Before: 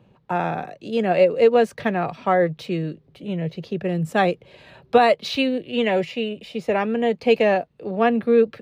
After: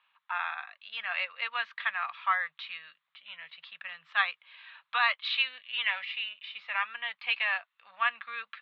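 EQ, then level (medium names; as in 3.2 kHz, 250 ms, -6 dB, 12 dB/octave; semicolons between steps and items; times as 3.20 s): elliptic band-pass 1.1–3.7 kHz, stop band 50 dB; 0.0 dB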